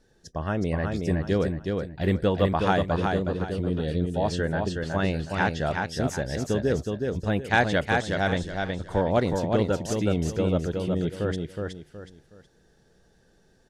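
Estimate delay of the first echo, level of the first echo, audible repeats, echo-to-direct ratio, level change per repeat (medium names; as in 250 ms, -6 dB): 369 ms, -4.0 dB, 3, -3.5 dB, -10.0 dB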